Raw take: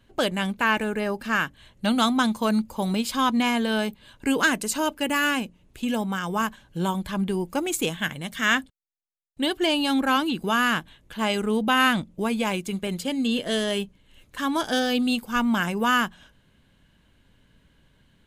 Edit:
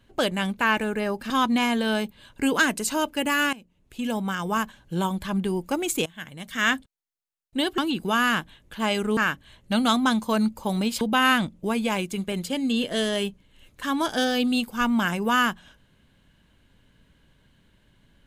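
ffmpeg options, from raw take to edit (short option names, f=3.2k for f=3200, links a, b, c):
-filter_complex "[0:a]asplit=7[a][b][c][d][e][f][g];[a]atrim=end=1.302[h];[b]atrim=start=3.138:end=5.37,asetpts=PTS-STARTPTS,afade=t=out:st=2.228:d=0.004:c=hsin:silence=0.105925[i];[c]atrim=start=5.37:end=7.9,asetpts=PTS-STARTPTS,afade=t=in:d=0.71:silence=0.105925,afade=t=out:st=2.526:d=0.004:c=hsin:silence=0.0944061[j];[d]atrim=start=7.9:end=9.622,asetpts=PTS-STARTPTS,afade=t=in:d=0.68:silence=0.0944061[k];[e]atrim=start=10.168:end=11.562[l];[f]atrim=start=1.298:end=3.142[m];[g]atrim=start=11.558[n];[i][j][k]concat=n=3:v=0:a=1[o];[h][o]acrossfade=d=0.004:c1=hsin:c2=hsin[p];[p][l]acrossfade=d=0.004:c1=hsin:c2=hsin[q];[q][m]acrossfade=d=0.004:c1=hsin:c2=hsin[r];[r][n]acrossfade=d=0.004:c1=hsin:c2=hsin"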